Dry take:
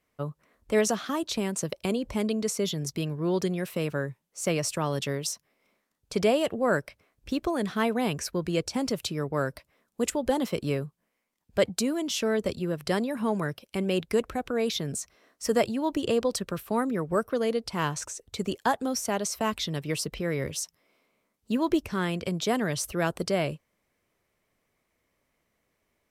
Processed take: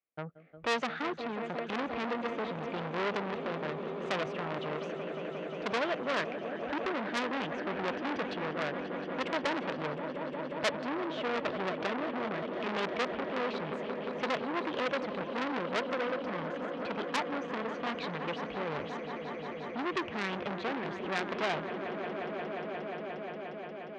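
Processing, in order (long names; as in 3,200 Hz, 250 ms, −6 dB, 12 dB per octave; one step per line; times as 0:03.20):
low-pass filter 2,500 Hz 24 dB per octave
noise gate with hold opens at −59 dBFS
high-pass filter 310 Hz 6 dB per octave
in parallel at −3 dB: downward compressor, threshold −34 dBFS, peak gain reduction 14.5 dB
on the sum: rotating-speaker cabinet horn 0.85 Hz
echo that builds up and dies away 193 ms, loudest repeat 5, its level −13.5 dB
wrong playback speed 44.1 kHz file played as 48 kHz
saturating transformer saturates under 3,400 Hz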